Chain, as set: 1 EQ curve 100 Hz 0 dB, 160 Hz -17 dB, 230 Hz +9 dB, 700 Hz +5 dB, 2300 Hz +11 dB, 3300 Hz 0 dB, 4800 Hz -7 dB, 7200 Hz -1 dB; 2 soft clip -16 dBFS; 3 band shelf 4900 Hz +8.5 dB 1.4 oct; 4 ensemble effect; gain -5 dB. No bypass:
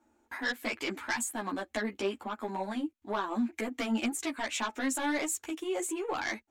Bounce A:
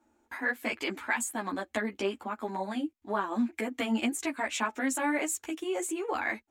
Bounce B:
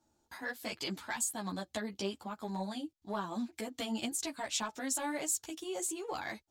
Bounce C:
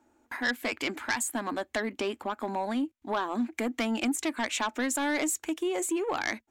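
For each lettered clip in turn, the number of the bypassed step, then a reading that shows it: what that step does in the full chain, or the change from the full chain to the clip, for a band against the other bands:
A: 2, distortion -15 dB; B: 1, loudness change -3.5 LU; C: 4, loudness change +3.0 LU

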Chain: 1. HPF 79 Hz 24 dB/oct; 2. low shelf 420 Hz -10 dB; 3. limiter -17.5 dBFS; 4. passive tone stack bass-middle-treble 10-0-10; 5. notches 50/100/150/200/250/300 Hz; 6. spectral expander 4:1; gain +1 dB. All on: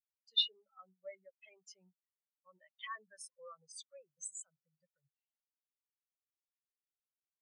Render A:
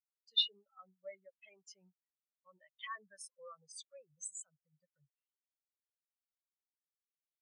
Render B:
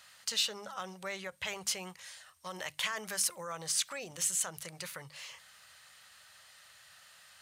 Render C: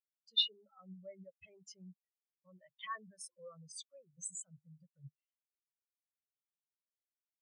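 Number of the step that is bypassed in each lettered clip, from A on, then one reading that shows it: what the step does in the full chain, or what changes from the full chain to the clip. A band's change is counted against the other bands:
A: 5, 250 Hz band +2.5 dB; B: 6, 250 Hz band +15.0 dB; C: 2, 250 Hz band +19.0 dB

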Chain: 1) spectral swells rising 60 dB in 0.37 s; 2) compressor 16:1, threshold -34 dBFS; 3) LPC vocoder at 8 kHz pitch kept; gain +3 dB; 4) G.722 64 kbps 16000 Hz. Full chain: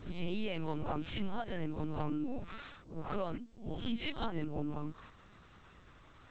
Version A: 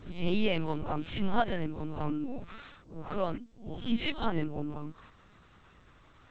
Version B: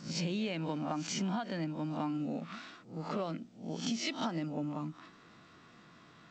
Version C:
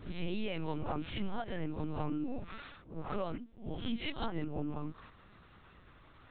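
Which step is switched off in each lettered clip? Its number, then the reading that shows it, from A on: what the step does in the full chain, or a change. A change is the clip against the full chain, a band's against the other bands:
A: 2, mean gain reduction 2.5 dB; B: 3, 4 kHz band +3.0 dB; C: 4, momentary loudness spread change -5 LU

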